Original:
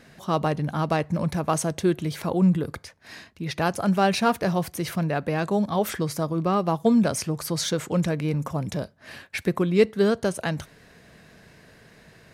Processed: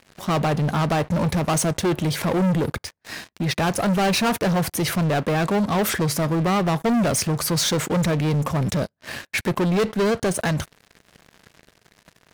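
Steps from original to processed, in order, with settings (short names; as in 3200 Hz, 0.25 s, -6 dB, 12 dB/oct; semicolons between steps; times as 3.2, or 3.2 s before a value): sample leveller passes 5; gain -8.5 dB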